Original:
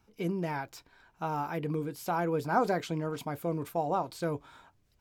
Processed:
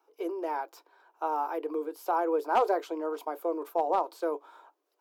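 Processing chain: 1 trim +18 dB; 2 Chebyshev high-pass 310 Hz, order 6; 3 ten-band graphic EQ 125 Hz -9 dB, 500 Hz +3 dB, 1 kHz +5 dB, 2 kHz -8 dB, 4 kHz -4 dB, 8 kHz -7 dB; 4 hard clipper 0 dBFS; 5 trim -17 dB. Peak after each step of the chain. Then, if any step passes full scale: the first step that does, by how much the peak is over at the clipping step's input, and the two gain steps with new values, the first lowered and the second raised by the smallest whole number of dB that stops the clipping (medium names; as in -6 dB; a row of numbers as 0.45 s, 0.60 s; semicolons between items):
+4.5 dBFS, +3.5 dBFS, +6.0 dBFS, 0.0 dBFS, -17.0 dBFS; step 1, 6.0 dB; step 1 +12 dB, step 5 -11 dB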